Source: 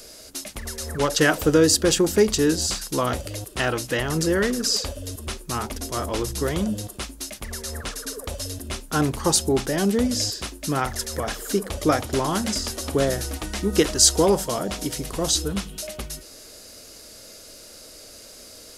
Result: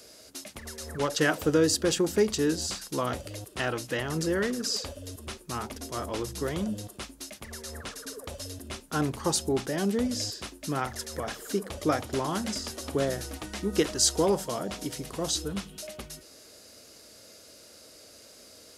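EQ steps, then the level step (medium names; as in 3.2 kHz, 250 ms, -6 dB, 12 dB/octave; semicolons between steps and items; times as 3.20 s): high-pass 78 Hz 12 dB/octave; treble shelf 6.4 kHz -4 dB; -6.0 dB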